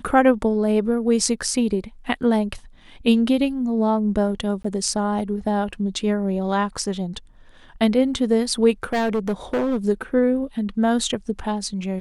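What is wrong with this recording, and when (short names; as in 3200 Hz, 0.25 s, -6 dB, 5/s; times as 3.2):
4.63–4.64 gap 14 ms
8.83–9.77 clipped -17.5 dBFS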